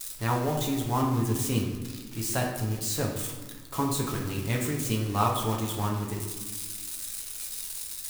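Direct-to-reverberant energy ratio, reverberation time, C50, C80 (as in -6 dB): -1.0 dB, 1.4 s, 4.5 dB, 7.0 dB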